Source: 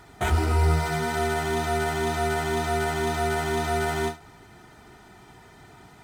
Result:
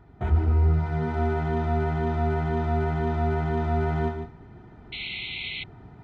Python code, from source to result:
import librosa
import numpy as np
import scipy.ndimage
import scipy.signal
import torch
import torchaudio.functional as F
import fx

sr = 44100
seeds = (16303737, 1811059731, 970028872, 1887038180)

p1 = fx.low_shelf(x, sr, hz=320.0, db=10.0)
p2 = p1 + fx.echo_multitap(p1, sr, ms=(50, 146), db=(-17.0, -8.5), dry=0)
p3 = fx.rider(p2, sr, range_db=3, speed_s=0.5)
p4 = fx.spec_paint(p3, sr, seeds[0], shape='noise', start_s=4.92, length_s=0.72, low_hz=2000.0, high_hz=4300.0, level_db=-19.0)
p5 = fx.spacing_loss(p4, sr, db_at_10k=35)
y = p5 * 10.0 ** (-5.0 / 20.0)